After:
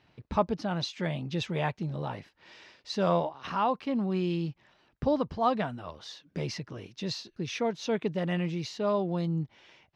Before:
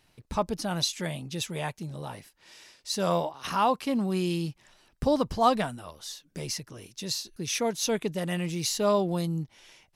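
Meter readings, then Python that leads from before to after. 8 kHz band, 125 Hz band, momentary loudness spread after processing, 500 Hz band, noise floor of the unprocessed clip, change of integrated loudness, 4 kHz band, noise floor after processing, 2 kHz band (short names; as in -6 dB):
-14.5 dB, +0.5 dB, 10 LU, -1.5 dB, -67 dBFS, -2.0 dB, -6.0 dB, -71 dBFS, -1.5 dB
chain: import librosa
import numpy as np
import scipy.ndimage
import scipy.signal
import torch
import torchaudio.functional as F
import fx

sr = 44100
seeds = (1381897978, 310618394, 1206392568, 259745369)

y = scipy.signal.sosfilt(scipy.signal.butter(2, 62.0, 'highpass', fs=sr, output='sos'), x)
y = fx.rider(y, sr, range_db=4, speed_s=0.5)
y = fx.air_absorb(y, sr, metres=220.0)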